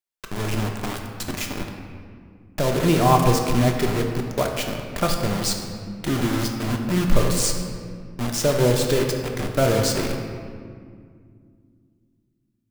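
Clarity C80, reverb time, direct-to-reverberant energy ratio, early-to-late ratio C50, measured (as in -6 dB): 5.5 dB, 2.1 s, 2.0 dB, 4.5 dB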